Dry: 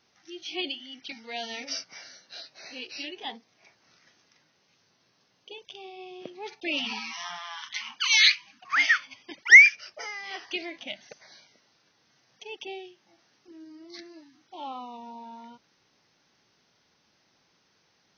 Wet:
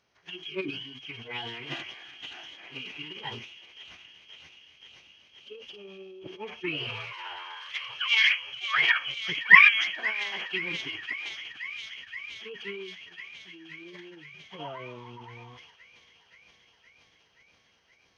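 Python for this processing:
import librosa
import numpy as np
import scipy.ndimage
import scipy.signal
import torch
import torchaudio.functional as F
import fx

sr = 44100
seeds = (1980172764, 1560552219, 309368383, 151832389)

y = fx.echo_wet_highpass(x, sr, ms=523, feedback_pct=77, hz=4200.0, wet_db=-4.0)
y = fx.transient(y, sr, attack_db=7, sustain_db=11)
y = fx.pitch_keep_formants(y, sr, semitones=-11.5)
y = y * 10.0 ** (-3.0 / 20.0)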